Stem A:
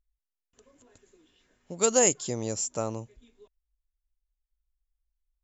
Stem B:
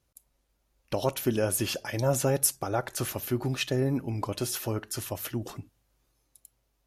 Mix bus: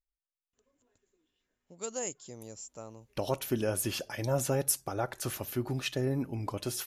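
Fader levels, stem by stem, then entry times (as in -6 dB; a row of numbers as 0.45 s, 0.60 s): -14.5 dB, -4.0 dB; 0.00 s, 2.25 s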